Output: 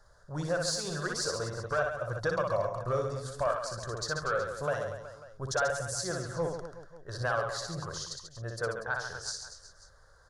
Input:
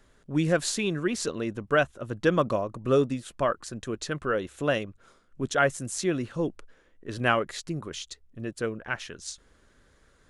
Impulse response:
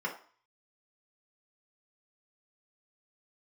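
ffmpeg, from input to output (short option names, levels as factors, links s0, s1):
-af "firequalizer=gain_entry='entry(100,0);entry(170,-7);entry(240,-22);entry(540,2);entry(1600,2);entry(2400,-25);entry(4600,4);entry(7600,-4)':delay=0.05:min_phase=1,alimiter=limit=0.112:level=0:latency=1:release=235,asoftclip=type=tanh:threshold=0.106,aecho=1:1:60|138|239.4|371.2|542.6:0.631|0.398|0.251|0.158|0.1"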